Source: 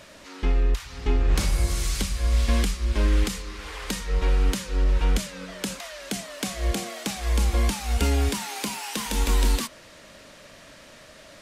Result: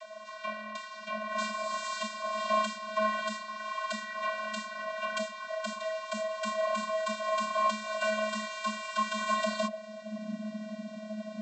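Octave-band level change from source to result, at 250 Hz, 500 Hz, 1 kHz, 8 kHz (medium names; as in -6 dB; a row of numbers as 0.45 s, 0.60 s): -7.5 dB, +1.0 dB, +5.0 dB, -12.0 dB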